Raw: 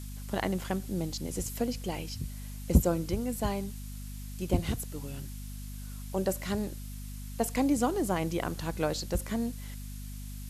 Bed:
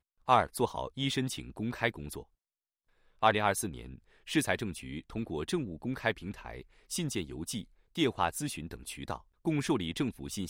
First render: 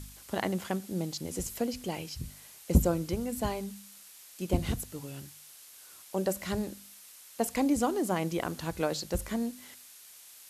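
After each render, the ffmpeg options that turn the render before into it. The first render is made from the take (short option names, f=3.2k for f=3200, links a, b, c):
-af "bandreject=f=50:t=h:w=4,bandreject=f=100:t=h:w=4,bandreject=f=150:t=h:w=4,bandreject=f=200:t=h:w=4,bandreject=f=250:t=h:w=4"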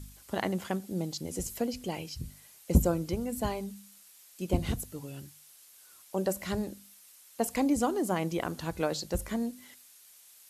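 -af "afftdn=nr=6:nf=-53"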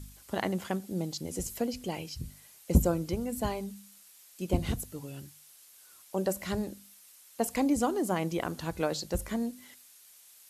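-af anull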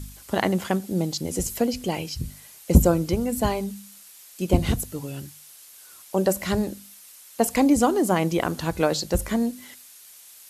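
-af "volume=8.5dB,alimiter=limit=-2dB:level=0:latency=1"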